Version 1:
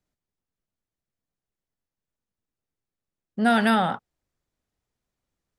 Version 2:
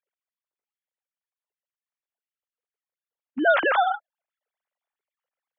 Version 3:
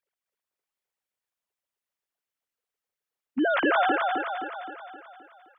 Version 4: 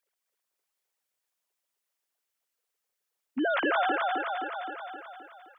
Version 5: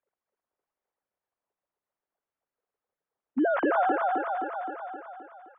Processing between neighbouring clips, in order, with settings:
sine-wave speech
limiter -19.5 dBFS, peak gain reduction 10.5 dB; on a send: feedback echo 0.261 s, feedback 53%, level -3.5 dB; on the sum: gain +2 dB
tone controls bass -7 dB, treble +4 dB; compressor 1.5:1, threshold -38 dBFS, peak gain reduction 7 dB; gain +3 dB
LPF 1100 Hz 12 dB/oct; gain +4 dB

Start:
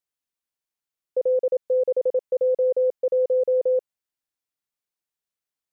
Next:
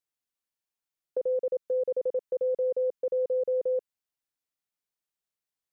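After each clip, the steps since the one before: dynamic EQ 650 Hz, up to -5 dB, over -32 dBFS, Q 1; gain -2.5 dB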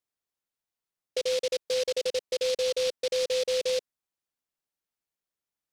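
noise-modulated delay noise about 3800 Hz, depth 0.12 ms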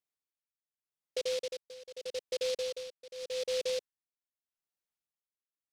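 tremolo 0.83 Hz, depth 87%; gain -5 dB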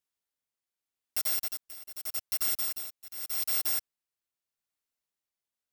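FFT order left unsorted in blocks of 256 samples; gain +3.5 dB

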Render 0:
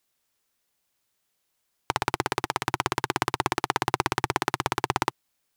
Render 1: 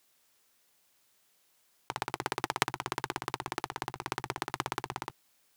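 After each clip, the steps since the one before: low shelf 120 Hz -8 dB; negative-ratio compressor -31 dBFS, ratio -0.5; gain -1 dB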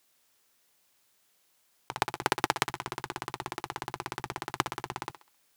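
level quantiser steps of 11 dB; thinning echo 66 ms, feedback 36%, high-pass 420 Hz, level -12 dB; gain +7.5 dB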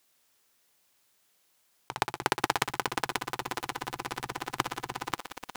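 lo-fi delay 0.536 s, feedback 55%, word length 6-bit, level -3.5 dB

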